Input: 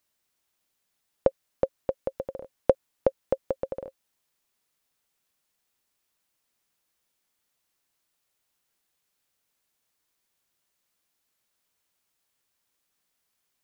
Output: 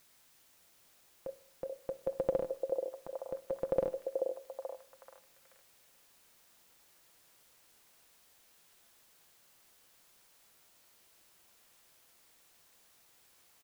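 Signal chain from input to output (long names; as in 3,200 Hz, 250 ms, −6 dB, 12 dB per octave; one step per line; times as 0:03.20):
comb filter 5.9 ms, depth 47%
in parallel at −2 dB: brickwall limiter −16 dBFS, peak gain reduction 11.5 dB
on the sum: compressor whose output falls as the input rises −27 dBFS, ratio −1
bit-depth reduction 10 bits, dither triangular
echo through a band-pass that steps 433 ms, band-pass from 510 Hz, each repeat 0.7 octaves, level −2 dB
on a send at −17 dB: convolution reverb RT60 0.65 s, pre-delay 38 ms
on the sum: level −6.5 dB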